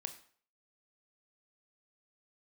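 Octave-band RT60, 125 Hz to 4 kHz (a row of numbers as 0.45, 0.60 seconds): 0.45, 0.45, 0.50, 0.50, 0.45, 0.45 seconds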